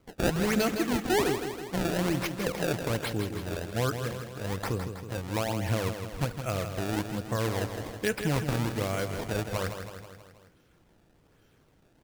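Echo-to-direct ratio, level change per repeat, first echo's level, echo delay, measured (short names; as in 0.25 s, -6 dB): -6.0 dB, -4.5 dB, -8.0 dB, 0.161 s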